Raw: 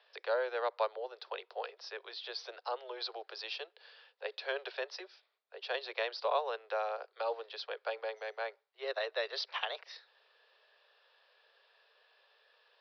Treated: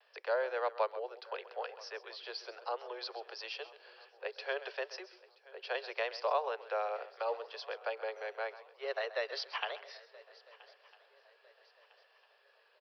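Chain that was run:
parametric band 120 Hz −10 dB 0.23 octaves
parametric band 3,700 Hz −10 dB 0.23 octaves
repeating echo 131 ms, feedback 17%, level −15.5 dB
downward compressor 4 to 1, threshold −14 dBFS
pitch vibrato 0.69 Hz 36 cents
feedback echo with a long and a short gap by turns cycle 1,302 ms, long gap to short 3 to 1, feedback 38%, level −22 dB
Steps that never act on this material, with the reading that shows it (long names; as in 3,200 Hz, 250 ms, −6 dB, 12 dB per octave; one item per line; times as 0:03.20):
parametric band 120 Hz: nothing at its input below 340 Hz
downward compressor, threshold −14 dBFS: peak of its input −20.0 dBFS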